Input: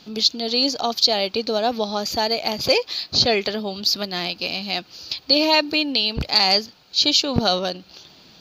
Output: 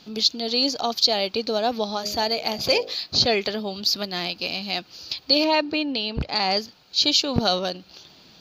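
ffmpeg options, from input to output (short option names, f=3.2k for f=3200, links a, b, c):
-filter_complex "[0:a]asettb=1/sr,asplit=3[a][b][c];[a]atrim=end=1.934[d];[b]atrim=start=1.93:end=2.95,asetpts=PTS-STARTPTS,afade=t=in:d=0.004:c=qsin,afade=t=out:st=1.016:d=0.004:c=qsin,bandreject=f=51.75:t=h:w=4,bandreject=f=103.5:t=h:w=4,bandreject=f=155.25:t=h:w=4,bandreject=f=207:t=h:w=4,bandreject=f=258.75:t=h:w=4,bandreject=f=310.5:t=h:w=4,bandreject=f=362.25:t=h:w=4,bandreject=f=414:t=h:w=4,bandreject=f=465.75:t=h:w=4,bandreject=f=517.5:t=h:w=4,bandreject=f=569.25:t=h:w=4,bandreject=f=621:t=h:w=4,bandreject=f=672.75:t=h:w=4,bandreject=f=724.5:t=h:w=4,bandreject=f=776.25:t=h:w=4[e];[c]atrim=start=2.946[f];[d][e]acrossfade=d=0.004:c1=hsin:c2=qsin[g];[g][f]acrossfade=d=0.004:c1=qsin:c2=hsin,asettb=1/sr,asplit=3[h][i][j];[h]atrim=end=5.444[k];[i]atrim=start=5.44:end=6.57,asetpts=PTS-STARTPTS,afade=t=in:d=0.004:c=qsin,afade=t=out:st=1.126:d=0.004:c=qsin,aemphasis=mode=reproduction:type=75fm[l];[j]atrim=start=6.566[m];[k][l]acrossfade=d=0.004:c1=hsin:c2=qsin[n];[n][m]acrossfade=d=0.004:c1=qsin:c2=hsin,volume=-2dB"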